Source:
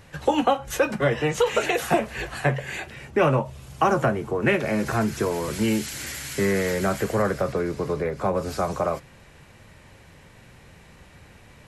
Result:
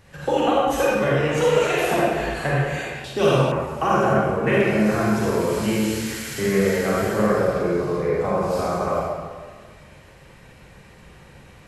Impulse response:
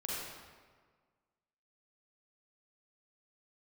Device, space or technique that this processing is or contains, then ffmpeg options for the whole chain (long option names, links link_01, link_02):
stairwell: -filter_complex "[1:a]atrim=start_sample=2205[link_01];[0:a][link_01]afir=irnorm=-1:irlink=0,asettb=1/sr,asplit=3[link_02][link_03][link_04];[link_02]atrim=end=3.044[link_05];[link_03]atrim=start=3.04:end=3.52,asetpts=PTS-STARTPTS,afade=type=in:duration=0.004:curve=qsin,afade=type=out:start_time=0.476:duration=0.004:curve=qsin,highshelf=frequency=2800:width_type=q:width=3:gain=9.5[link_06];[link_04]atrim=start=3.516[link_07];[link_05][link_06]acrossfade=duration=0.004:curve1=hsin:curve2=qsin[link_08];[link_08][link_07]acrossfade=duration=0.004:curve1=qsin:curve2=hsin"